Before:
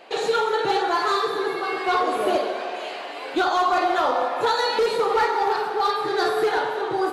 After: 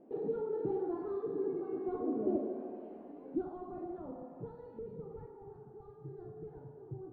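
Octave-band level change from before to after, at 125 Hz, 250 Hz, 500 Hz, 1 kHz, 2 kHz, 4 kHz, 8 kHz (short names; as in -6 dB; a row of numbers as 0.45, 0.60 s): n/a, -7.5 dB, -15.0 dB, -29.0 dB, under -40 dB, under -40 dB, under -40 dB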